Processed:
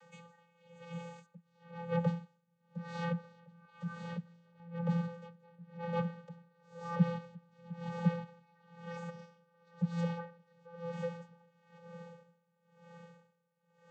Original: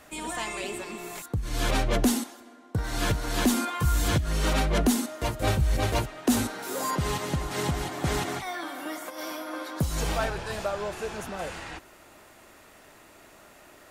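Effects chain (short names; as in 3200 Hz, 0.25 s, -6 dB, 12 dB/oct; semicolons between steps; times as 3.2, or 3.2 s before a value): low shelf 440 Hz -4 dB; treble ducked by the level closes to 2400 Hz, closed at -24 dBFS; diffused feedback echo 1.217 s, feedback 42%, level -13.5 dB; vocoder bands 16, square 170 Hz; 3.65–4.6 comb 3 ms, depth 54%; dB-linear tremolo 1 Hz, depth 29 dB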